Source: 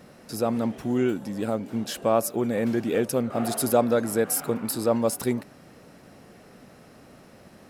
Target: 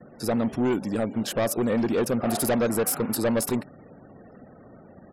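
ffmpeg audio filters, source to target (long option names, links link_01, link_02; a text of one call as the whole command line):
ffmpeg -i in.wav -af "asoftclip=type=hard:threshold=-22.5dB,afftfilt=real='re*gte(hypot(re,im),0.00355)':imag='im*gte(hypot(re,im),0.00355)':win_size=1024:overlap=0.75,atempo=1.5,volume=3dB" out.wav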